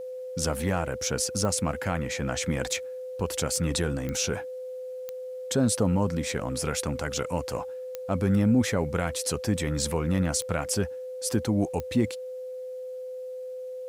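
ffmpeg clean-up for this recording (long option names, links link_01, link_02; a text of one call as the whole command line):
ffmpeg -i in.wav -af "adeclick=threshold=4,bandreject=frequency=510:width=30,agate=range=-21dB:threshold=-29dB" out.wav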